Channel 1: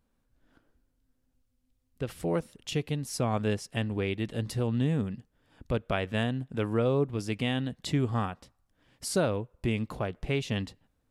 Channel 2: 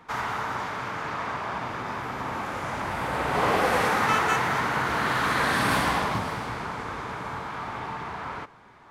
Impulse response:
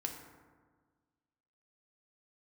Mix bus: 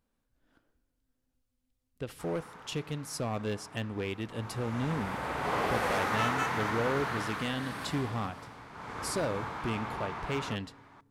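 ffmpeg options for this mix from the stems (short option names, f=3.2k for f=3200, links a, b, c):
-filter_complex "[0:a]lowshelf=f=260:g=-4,volume=24dB,asoftclip=hard,volume=-24dB,volume=-3.5dB,asplit=2[a][b];[b]volume=-17dB[c];[1:a]adelay=2100,volume=4dB,afade=t=in:st=4.28:d=0.67:silence=0.223872,afade=t=out:st=6.98:d=0.52:silence=0.354813,afade=t=in:st=8.72:d=0.32:silence=0.251189,asplit=2[d][e];[e]volume=-19.5dB[f];[2:a]atrim=start_sample=2205[g];[c][f]amix=inputs=2:normalize=0[h];[h][g]afir=irnorm=-1:irlink=0[i];[a][d][i]amix=inputs=3:normalize=0"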